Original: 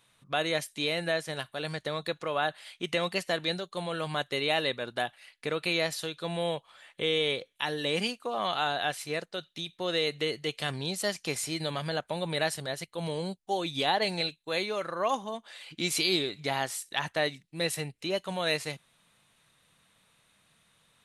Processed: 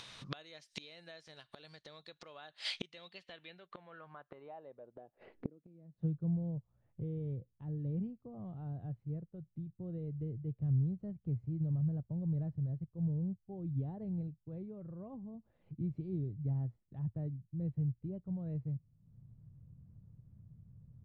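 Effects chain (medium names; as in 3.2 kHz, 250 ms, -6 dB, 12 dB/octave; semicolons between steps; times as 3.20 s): low-pass sweep 5.2 kHz -> 110 Hz, 2.88–6.40 s; inverted gate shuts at -30 dBFS, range -33 dB; upward compressor, threshold -51 dBFS; trim +6 dB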